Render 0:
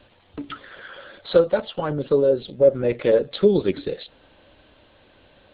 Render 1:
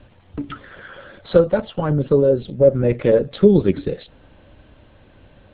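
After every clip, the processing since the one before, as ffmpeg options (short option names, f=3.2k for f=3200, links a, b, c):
-af "bass=f=250:g=10,treble=f=4k:g=-14,volume=1.5dB"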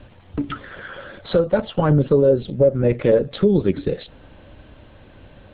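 -af "alimiter=limit=-10dB:level=0:latency=1:release=356,volume=3.5dB"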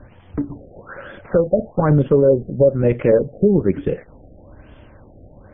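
-af "afftfilt=real='re*lt(b*sr/1024,760*pow(3600/760,0.5+0.5*sin(2*PI*1.1*pts/sr)))':imag='im*lt(b*sr/1024,760*pow(3600/760,0.5+0.5*sin(2*PI*1.1*pts/sr)))':win_size=1024:overlap=0.75,volume=1.5dB"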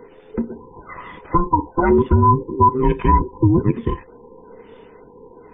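-af "afftfilt=real='real(if(between(b,1,1008),(2*floor((b-1)/24)+1)*24-b,b),0)':imag='imag(if(between(b,1,1008),(2*floor((b-1)/24)+1)*24-b,b),0)*if(between(b,1,1008),-1,1)':win_size=2048:overlap=0.75"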